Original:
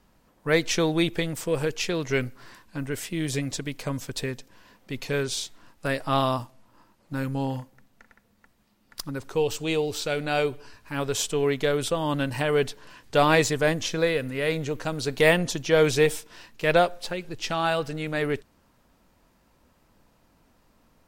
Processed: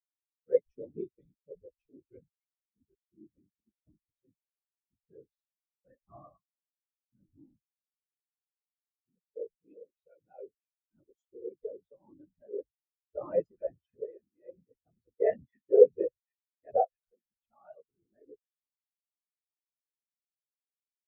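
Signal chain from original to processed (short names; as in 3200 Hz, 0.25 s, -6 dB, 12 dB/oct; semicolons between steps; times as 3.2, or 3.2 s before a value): thin delay 0.264 s, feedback 66%, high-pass 1900 Hz, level -5.5 dB; whisperiser; spectral expander 4:1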